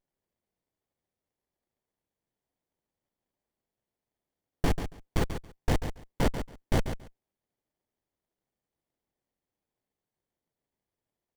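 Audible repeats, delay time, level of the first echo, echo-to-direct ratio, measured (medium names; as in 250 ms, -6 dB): 2, 139 ms, -9.0 dB, -9.0 dB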